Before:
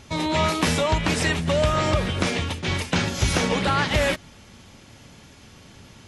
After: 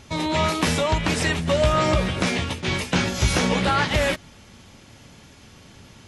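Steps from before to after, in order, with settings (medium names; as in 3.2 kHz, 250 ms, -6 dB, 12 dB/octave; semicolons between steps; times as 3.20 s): 1.46–3.85 s: doubling 16 ms -6 dB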